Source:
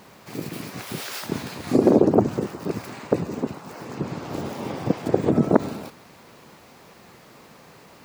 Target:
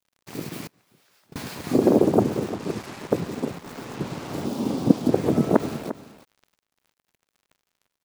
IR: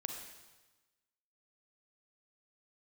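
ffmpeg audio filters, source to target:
-filter_complex "[0:a]asettb=1/sr,asplit=3[s0][s1][s2];[s0]atrim=end=2.494[s3];[s1]atrim=start=2.49:end=2.99,asetpts=PTS-STARTPTS,afade=t=in:d=0.004:c=qsin,afade=t=out:st=0.496:d=0.004:c=qsin,lowpass=8500[s4];[s2]atrim=start=2.986[s5];[s3][s4]acrossfade=d=0.004:c1=hsin:c2=qsin[s6];[s6][s5]acrossfade=d=0.004:c1=qsin:c2=hsin,acrusher=bits=5:mix=0:aa=0.5,aecho=1:1:349:0.224,asettb=1/sr,asplit=3[s7][s8][s9];[s7]atrim=end=0.674[s10];[s8]atrim=start=0.67:end=1.36,asetpts=PTS-STARTPTS,afade=t=in:d=0.004:c=qsin,afade=t=out:st=0.686:d=0.004:c=qsin,agate=range=0.0398:threshold=0.0891:ratio=16:detection=peak[s11];[s9]atrim=start=1.356[s12];[s10][s11]acrossfade=d=0.004:c1=hsin:c2=qsin[s13];[s13][s12]acrossfade=d=0.004:c1=qsin:c2=hsin,asettb=1/sr,asplit=3[s14][s15][s16];[s14]atrim=end=4.454[s17];[s15]atrim=start=4.45:end=5.13,asetpts=PTS-STARTPTS,afade=t=in:d=0.004:c=qsin,afade=t=out:st=0.676:d=0.004:c=qsin,equalizer=f=250:t=o:w=1:g=11,equalizer=f=2000:t=o:w=1:g=-8,equalizer=f=4000:t=o:w=1:g=3[s18];[s16]atrim=start=5.126[s19];[s17][s18]acrossfade=d=0.004:c1=hsin:c2=qsin[s20];[s20][s19]acrossfade=d=0.004:c1=qsin:c2=hsin,volume=0.841"

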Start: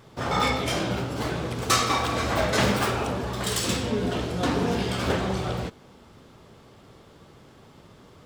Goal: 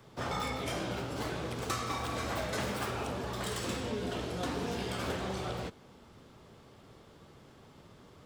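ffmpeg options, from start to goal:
-filter_complex "[0:a]acrossover=split=89|260|2300|7500[s0][s1][s2][s3][s4];[s0]acompressor=threshold=0.00891:ratio=4[s5];[s1]acompressor=threshold=0.0126:ratio=4[s6];[s2]acompressor=threshold=0.0316:ratio=4[s7];[s3]acompressor=threshold=0.01:ratio=4[s8];[s4]acompressor=threshold=0.00708:ratio=4[s9];[s5][s6][s7][s8][s9]amix=inputs=5:normalize=0,volume=0.562"

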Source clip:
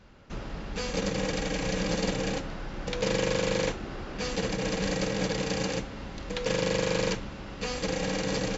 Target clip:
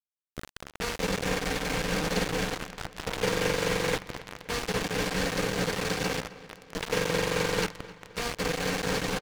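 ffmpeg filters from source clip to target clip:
-filter_complex "[0:a]equalizer=f=1500:t=o:w=1.6:g=5.5,atempo=0.97,aeval=exprs='0.237*(cos(1*acos(clip(val(0)/0.237,-1,1)))-cos(1*PI/2))+0.00596*(cos(4*acos(clip(val(0)/0.237,-1,1)))-cos(4*PI/2))':c=same,asetrate=42336,aresample=44100,tremolo=f=4.6:d=0.31,acrusher=bits=4:mix=0:aa=0.000001,asplit=2[s0][s1];[s1]aecho=0:1:261|522|783|1044|1305:0.133|0.0707|0.0375|0.0199|0.0105[s2];[s0][s2]amix=inputs=2:normalize=0,adynamicsmooth=sensitivity=8:basefreq=3800" -ar 44100 -c:a adpcm_ima_wav

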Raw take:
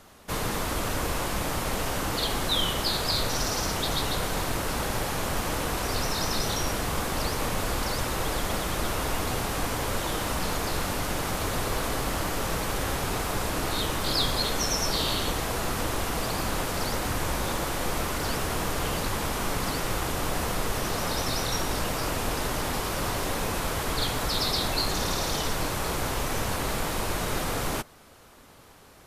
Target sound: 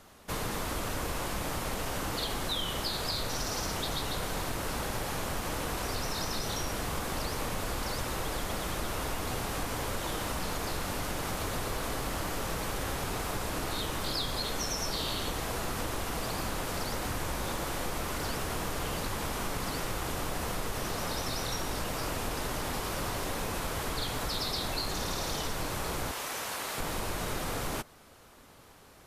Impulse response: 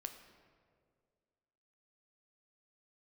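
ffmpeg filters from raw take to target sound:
-filter_complex "[0:a]asettb=1/sr,asplit=3[s0][s1][s2];[s0]atrim=end=26.114[s3];[s1]atrim=start=26.11:end=26.78,asetpts=PTS-STARTPTS,afade=t=in:d=0.004:c=qsin,afade=t=out:st=0.666:d=0.004:c=qsin,highpass=f=860:p=1[s4];[s2]atrim=start=26.776[s5];[s3][s4]acrossfade=d=0.004:c1=hsin:c2=qsin[s6];[s6][s5]acrossfade=d=0.004:c1=qsin:c2=hsin,acompressor=threshold=0.0447:ratio=3,volume=0.708"

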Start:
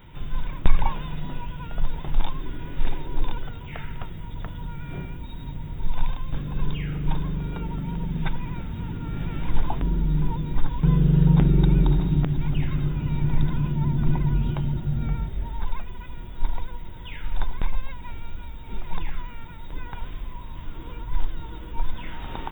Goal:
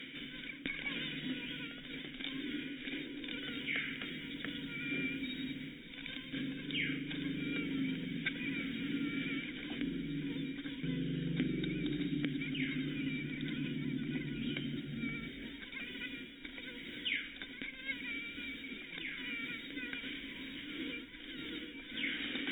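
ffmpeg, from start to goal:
-filter_complex "[0:a]lowshelf=f=390:g=-9,areverse,acompressor=mode=upward:threshold=0.112:ratio=2.5,areverse,equalizer=f=100:t=o:w=0.33:g=-12,equalizer=f=500:t=o:w=0.33:g=8,equalizer=f=800:t=o:w=0.33:g=8,equalizer=f=1600:t=o:w=0.33:g=10,crystalizer=i=2.5:c=0,asplit=3[s0][s1][s2];[s0]bandpass=f=270:t=q:w=8,volume=1[s3];[s1]bandpass=f=2290:t=q:w=8,volume=0.501[s4];[s2]bandpass=f=3010:t=q:w=8,volume=0.355[s5];[s3][s4][s5]amix=inputs=3:normalize=0,volume=1.68"

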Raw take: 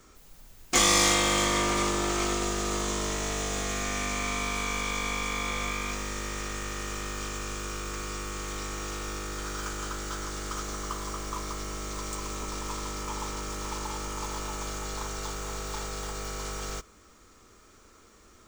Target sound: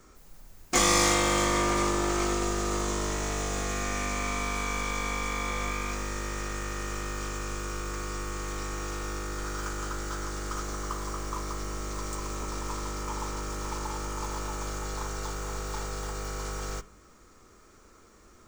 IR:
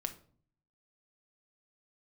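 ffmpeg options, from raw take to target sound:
-filter_complex "[0:a]asplit=2[s0][s1];[s1]lowpass=f=3500:w=0.5412,lowpass=f=3500:w=1.3066[s2];[1:a]atrim=start_sample=2205[s3];[s2][s3]afir=irnorm=-1:irlink=0,volume=0.447[s4];[s0][s4]amix=inputs=2:normalize=0,volume=0.794"

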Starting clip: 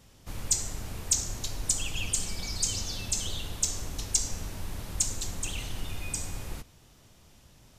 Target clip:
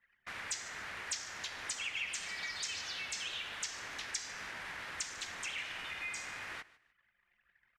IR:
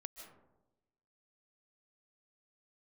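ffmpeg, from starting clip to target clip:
-filter_complex "[0:a]asplit=2[s0][s1];[s1]asetrate=37084,aresample=44100,atempo=1.18921,volume=0.631[s2];[s0][s2]amix=inputs=2:normalize=0,bandpass=f=1800:t=q:w=2.4:csg=0,acompressor=threshold=0.00178:ratio=2,anlmdn=0.00001,aecho=1:1:150|300:0.1|0.025,volume=4.22"

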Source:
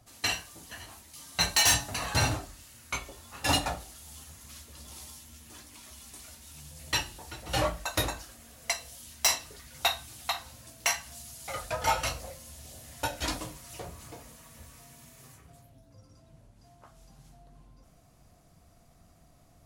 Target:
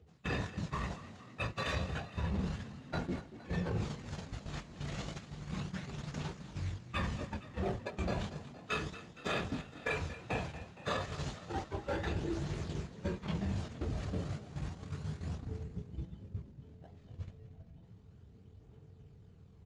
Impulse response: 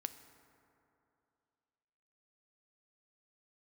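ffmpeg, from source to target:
-filter_complex "[0:a]flanger=delay=6.5:depth=3.2:regen=-51:speed=1.9:shape=triangular,asetrate=27781,aresample=44100,atempo=1.5874,aphaser=in_gain=1:out_gain=1:delay=1.8:decay=0.35:speed=0.32:type=triangular,asplit=2[s0][s1];[s1]acrusher=samples=13:mix=1:aa=0.000001:lfo=1:lforange=13:lforate=3.4,volume=0.708[s2];[s0][s2]amix=inputs=2:normalize=0,highpass=120,lowpass=7600,bass=f=250:g=14,treble=f=4000:g=-8,areverse,acompressor=threshold=0.01:ratio=20,areverse,agate=range=0.251:threshold=0.00501:ratio=16:detection=peak,asplit=8[s3][s4][s5][s6][s7][s8][s9][s10];[s4]adelay=232,afreqshift=31,volume=0.178[s11];[s5]adelay=464,afreqshift=62,volume=0.114[s12];[s6]adelay=696,afreqshift=93,volume=0.0724[s13];[s7]adelay=928,afreqshift=124,volume=0.0468[s14];[s8]adelay=1160,afreqshift=155,volume=0.0299[s15];[s9]adelay=1392,afreqshift=186,volume=0.0191[s16];[s10]adelay=1624,afreqshift=217,volume=0.0122[s17];[s3][s11][s12][s13][s14][s15][s16][s17]amix=inputs=8:normalize=0,volume=2.37"

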